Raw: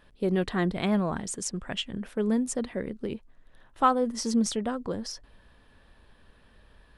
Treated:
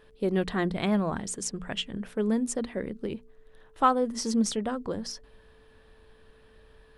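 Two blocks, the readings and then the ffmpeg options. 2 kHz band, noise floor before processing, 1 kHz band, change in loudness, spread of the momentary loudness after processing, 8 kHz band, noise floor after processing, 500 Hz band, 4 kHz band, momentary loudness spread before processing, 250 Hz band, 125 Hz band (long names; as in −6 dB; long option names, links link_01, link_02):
0.0 dB, −59 dBFS, 0.0 dB, −0.5 dB, 11 LU, 0.0 dB, −58 dBFS, 0.0 dB, 0.0 dB, 11 LU, −0.5 dB, −1.0 dB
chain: -af "bandreject=frequency=60:width_type=h:width=6,bandreject=frequency=120:width_type=h:width=6,bandreject=frequency=180:width_type=h:width=6,bandreject=frequency=240:width_type=h:width=6,aeval=exprs='val(0)+0.00112*sin(2*PI*440*n/s)':channel_layout=same"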